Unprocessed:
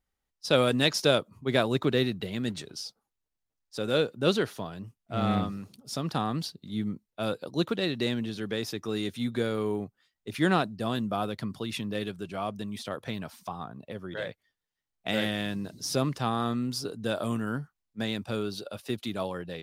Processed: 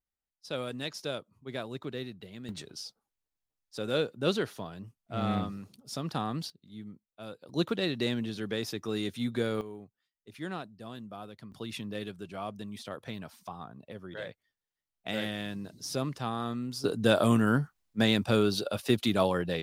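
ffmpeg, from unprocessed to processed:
-af "asetnsamples=n=441:p=0,asendcmd='2.49 volume volume -3.5dB;6.5 volume volume -13dB;7.49 volume volume -1.5dB;9.61 volume volume -13.5dB;11.52 volume volume -5dB;16.84 volume volume 6.5dB',volume=0.237"

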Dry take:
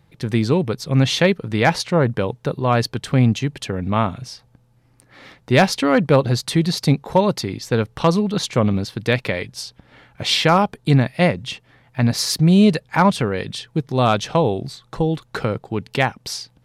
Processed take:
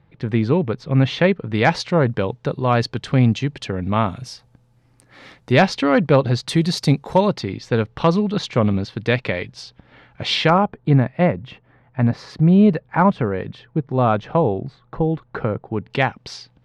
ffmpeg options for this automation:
-af "asetnsamples=n=441:p=0,asendcmd='1.54 lowpass f 5300;4.07 lowpass f 11000;5.52 lowpass f 4500;6.49 lowpass f 9600;7.28 lowpass f 4000;10.5 lowpass f 1600;15.9 lowpass f 3700',lowpass=2600"

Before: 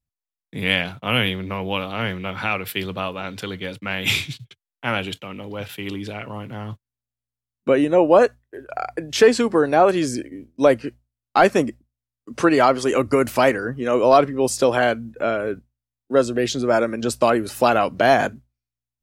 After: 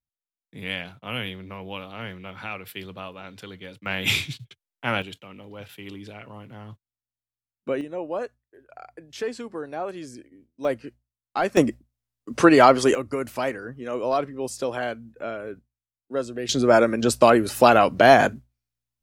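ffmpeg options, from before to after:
-af "asetnsamples=n=441:p=0,asendcmd='3.86 volume volume -2dB;5.02 volume volume -9.5dB;7.81 volume volume -16dB;10.65 volume volume -9.5dB;11.57 volume volume 2dB;12.95 volume volume -10dB;16.49 volume volume 2dB',volume=0.299"

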